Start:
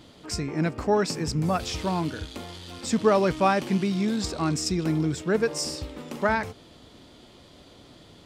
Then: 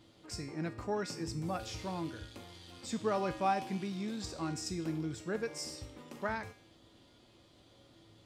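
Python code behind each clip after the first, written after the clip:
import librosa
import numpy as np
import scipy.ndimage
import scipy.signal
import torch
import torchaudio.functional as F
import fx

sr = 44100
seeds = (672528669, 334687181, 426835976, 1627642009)

y = fx.comb_fb(x, sr, f0_hz=110.0, decay_s=0.55, harmonics='odd', damping=0.0, mix_pct=80)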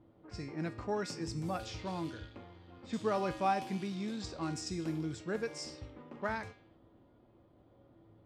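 y = fx.env_lowpass(x, sr, base_hz=910.0, full_db=-33.0)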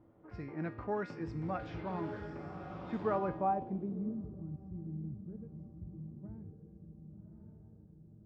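y = fx.echo_diffused(x, sr, ms=1154, feedback_pct=50, wet_db=-6.5)
y = fx.filter_sweep_lowpass(y, sr, from_hz=1800.0, to_hz=150.0, start_s=3.04, end_s=4.44, q=1.0)
y = F.gain(torch.from_numpy(y), -1.0).numpy()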